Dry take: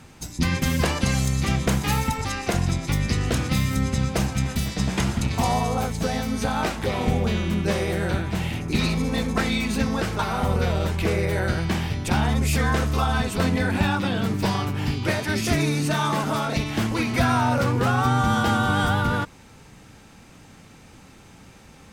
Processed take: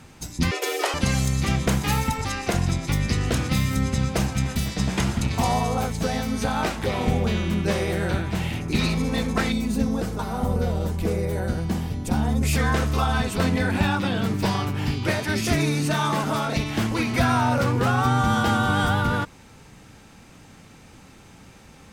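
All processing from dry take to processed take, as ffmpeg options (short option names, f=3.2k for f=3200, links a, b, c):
-filter_complex "[0:a]asettb=1/sr,asplit=3[a][b][c];[a]atrim=end=0.514[d];[b]atrim=start=0.51:end=0.94,asetpts=PTS-STARTPTS,afade=t=in:d=0.004:c=qsin,afade=t=out:st=0.426:d=0.004:c=qsin,highpass=230,afreqshift=220[e];[c]atrim=start=0.936[f];[d][e]acrossfade=d=0.004:c1=hsin:c2=qsin[g];[g][f]acrossfade=d=0.004:c1=qsin:c2=hsin,asettb=1/sr,asplit=3[h][i][j];[h]atrim=end=9.524[k];[i]atrim=start=9.52:end=12.43,asetpts=PTS-STARTPTS,afade=t=in:d=0.004:c=qsin,afade=t=out:st=2.906:d=0.004:c=qsin,equalizer=f=2.3k:t=o:w=2.5:g=-11.5,aecho=1:1:4.1:0.34,atrim=end_sample=128331[l];[j]atrim=start=12.426[m];[k][l]acrossfade=d=0.004:c1=hsin:c2=qsin[n];[n][m]acrossfade=d=0.004:c1=qsin:c2=hsin"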